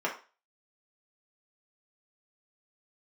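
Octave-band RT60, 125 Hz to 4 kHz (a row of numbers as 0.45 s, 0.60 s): 0.20 s, 0.30 s, 0.35 s, 0.35 s, 0.35 s, 0.35 s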